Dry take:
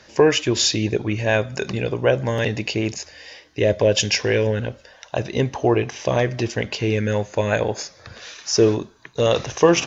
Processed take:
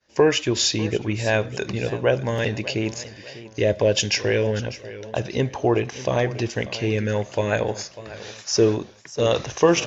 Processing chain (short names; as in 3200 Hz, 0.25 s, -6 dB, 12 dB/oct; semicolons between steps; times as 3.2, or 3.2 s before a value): expander -39 dBFS; warbling echo 0.594 s, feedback 37%, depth 100 cents, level -16 dB; gain -2 dB